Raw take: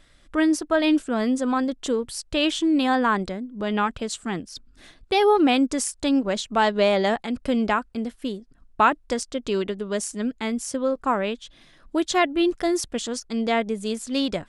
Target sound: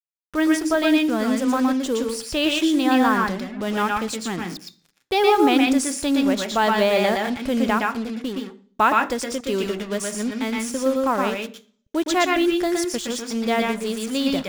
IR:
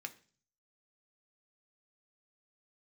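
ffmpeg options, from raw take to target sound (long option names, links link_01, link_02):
-filter_complex "[0:a]acrusher=bits=5:mix=0:aa=0.5,asplit=2[link_01][link_02];[1:a]atrim=start_sample=2205,adelay=117[link_03];[link_02][link_03]afir=irnorm=-1:irlink=0,volume=2dB[link_04];[link_01][link_04]amix=inputs=2:normalize=0"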